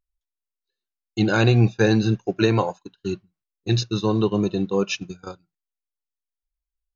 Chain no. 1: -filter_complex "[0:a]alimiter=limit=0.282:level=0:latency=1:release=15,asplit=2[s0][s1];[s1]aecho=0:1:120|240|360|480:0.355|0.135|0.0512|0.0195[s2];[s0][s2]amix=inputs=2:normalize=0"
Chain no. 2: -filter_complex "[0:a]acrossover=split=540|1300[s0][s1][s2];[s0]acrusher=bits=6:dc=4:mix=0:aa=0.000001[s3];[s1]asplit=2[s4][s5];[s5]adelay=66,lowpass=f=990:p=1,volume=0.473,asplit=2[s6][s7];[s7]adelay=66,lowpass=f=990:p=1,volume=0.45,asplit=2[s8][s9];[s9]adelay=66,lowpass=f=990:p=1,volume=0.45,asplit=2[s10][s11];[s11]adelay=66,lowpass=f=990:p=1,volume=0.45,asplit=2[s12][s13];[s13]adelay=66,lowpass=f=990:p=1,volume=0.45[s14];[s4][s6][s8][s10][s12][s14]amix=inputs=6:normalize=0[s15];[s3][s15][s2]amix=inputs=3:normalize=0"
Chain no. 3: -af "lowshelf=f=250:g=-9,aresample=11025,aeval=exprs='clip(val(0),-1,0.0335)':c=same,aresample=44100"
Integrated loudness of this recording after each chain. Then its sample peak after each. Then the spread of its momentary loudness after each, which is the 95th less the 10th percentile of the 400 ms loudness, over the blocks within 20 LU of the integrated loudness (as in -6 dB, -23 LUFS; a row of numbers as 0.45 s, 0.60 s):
-23.0 LUFS, -21.5 LUFS, -28.5 LUFS; -8.5 dBFS, -5.0 dBFS, -8.5 dBFS; 14 LU, 16 LU, 15 LU